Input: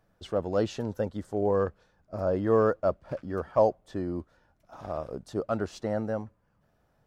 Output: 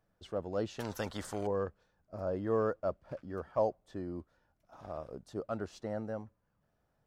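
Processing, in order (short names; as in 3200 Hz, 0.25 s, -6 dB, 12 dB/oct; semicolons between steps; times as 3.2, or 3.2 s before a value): 0.79–1.47 spectral compressor 2:1; gain -8 dB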